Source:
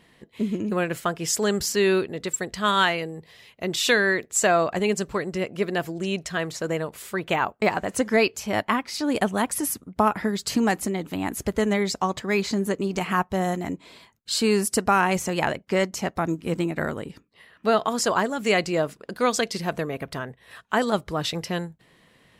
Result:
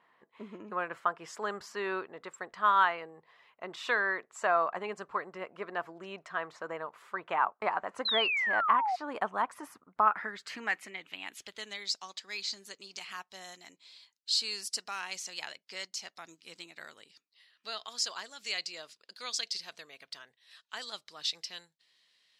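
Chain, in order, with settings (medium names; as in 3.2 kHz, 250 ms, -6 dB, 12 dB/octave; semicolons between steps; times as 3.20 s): band-pass sweep 1.1 kHz -> 4.6 kHz, 9.83–11.88 s; painted sound fall, 8.05–8.96 s, 700–4200 Hz -30 dBFS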